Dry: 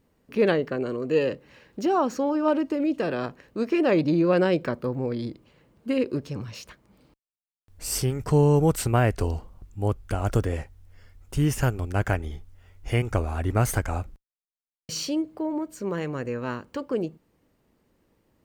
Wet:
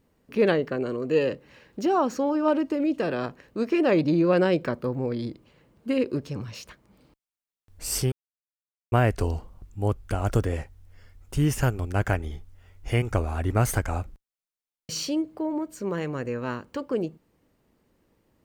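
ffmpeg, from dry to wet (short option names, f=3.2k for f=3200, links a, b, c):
-filter_complex "[0:a]asplit=3[a][b][c];[a]atrim=end=8.12,asetpts=PTS-STARTPTS,afade=t=out:st=8.116:d=0.004:c=hsin[d];[b]atrim=start=8.12:end=8.92,asetpts=PTS-STARTPTS,volume=0[e];[c]atrim=start=8.92,asetpts=PTS-STARTPTS,afade=t=in:d=0.004:c=hsin[f];[d][e][f]concat=n=3:v=0:a=1"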